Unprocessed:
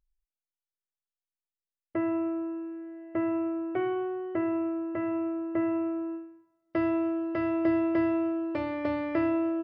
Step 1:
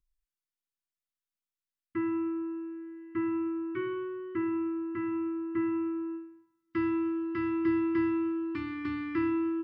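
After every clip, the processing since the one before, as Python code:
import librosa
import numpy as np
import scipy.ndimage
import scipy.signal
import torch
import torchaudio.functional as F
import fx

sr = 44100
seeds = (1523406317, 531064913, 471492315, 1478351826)

y = scipy.signal.sosfilt(scipy.signal.cheby1(4, 1.0, [360.0, 1000.0], 'bandstop', fs=sr, output='sos'), x)
y = y * 10.0 ** (-1.0 / 20.0)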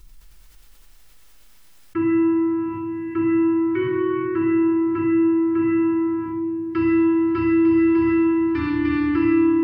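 y = fx.room_shoebox(x, sr, seeds[0], volume_m3=3600.0, walls='mixed', distance_m=4.3)
y = fx.env_flatten(y, sr, amount_pct=50)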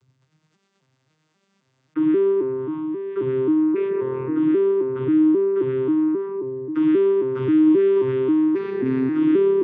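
y = fx.vocoder_arp(x, sr, chord='minor triad', root=48, every_ms=267)
y = y * 10.0 ** (1.5 / 20.0)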